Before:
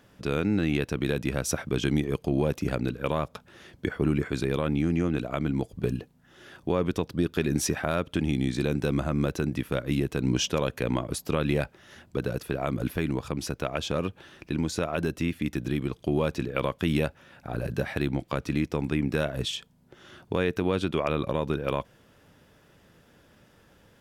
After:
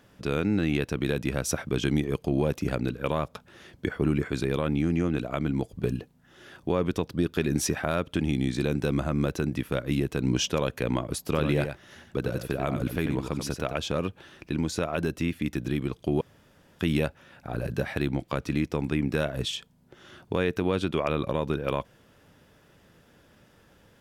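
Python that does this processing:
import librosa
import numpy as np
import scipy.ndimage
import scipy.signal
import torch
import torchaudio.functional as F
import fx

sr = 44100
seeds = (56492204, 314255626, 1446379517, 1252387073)

y = fx.echo_single(x, sr, ms=91, db=-7.5, at=(11.26, 13.72), fade=0.02)
y = fx.edit(y, sr, fx.room_tone_fill(start_s=16.21, length_s=0.58), tone=tone)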